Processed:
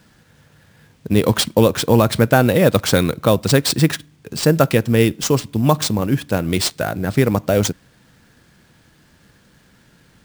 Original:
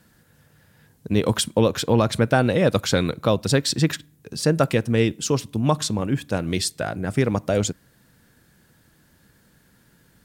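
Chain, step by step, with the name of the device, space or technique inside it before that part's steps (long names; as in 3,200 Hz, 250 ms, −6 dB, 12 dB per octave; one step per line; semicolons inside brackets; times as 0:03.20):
early companding sampler (sample-rate reduction 13,000 Hz, jitter 0%; log-companded quantiser 8 bits)
level +5 dB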